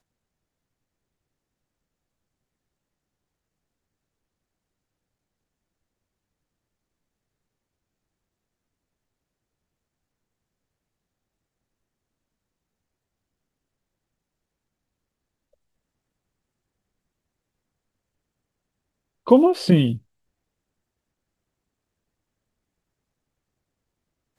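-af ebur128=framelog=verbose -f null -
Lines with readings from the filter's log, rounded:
Integrated loudness:
  I:         -17.9 LUFS
  Threshold: -29.1 LUFS
Loudness range:
  LRA:         4.5 LU
  Threshold: -44.0 LUFS
  LRA low:   -27.6 LUFS
  LRA high:  -23.1 LUFS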